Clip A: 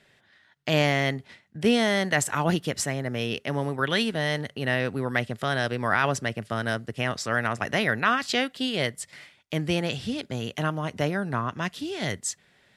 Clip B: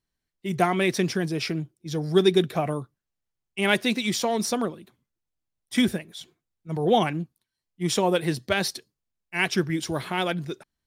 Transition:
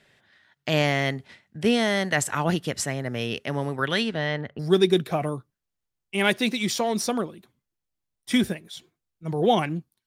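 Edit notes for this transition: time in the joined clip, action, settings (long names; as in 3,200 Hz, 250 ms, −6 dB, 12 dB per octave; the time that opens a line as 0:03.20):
clip A
0:04.00–0:04.59: low-pass filter 7,800 Hz → 1,400 Hz
0:04.59: continue with clip B from 0:02.03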